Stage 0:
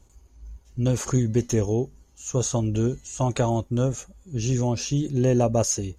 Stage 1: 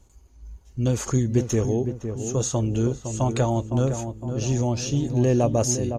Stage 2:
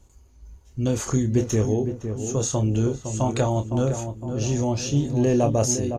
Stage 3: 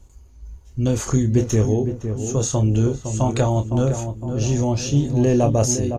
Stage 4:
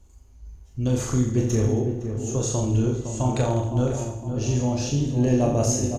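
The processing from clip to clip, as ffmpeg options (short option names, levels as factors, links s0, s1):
-filter_complex "[0:a]asplit=2[s0][s1];[s1]adelay=510,lowpass=f=1300:p=1,volume=0.422,asplit=2[s2][s3];[s3]adelay=510,lowpass=f=1300:p=1,volume=0.52,asplit=2[s4][s5];[s5]adelay=510,lowpass=f=1300:p=1,volume=0.52,asplit=2[s6][s7];[s7]adelay=510,lowpass=f=1300:p=1,volume=0.52,asplit=2[s8][s9];[s9]adelay=510,lowpass=f=1300:p=1,volume=0.52,asplit=2[s10][s11];[s11]adelay=510,lowpass=f=1300:p=1,volume=0.52[s12];[s0][s2][s4][s6][s8][s10][s12]amix=inputs=7:normalize=0"
-filter_complex "[0:a]asplit=2[s0][s1];[s1]adelay=28,volume=0.398[s2];[s0][s2]amix=inputs=2:normalize=0"
-af "lowshelf=f=95:g=6.5,volume=1.26"
-af "aecho=1:1:40|86|138.9|199.7|269.7:0.631|0.398|0.251|0.158|0.1,volume=0.531"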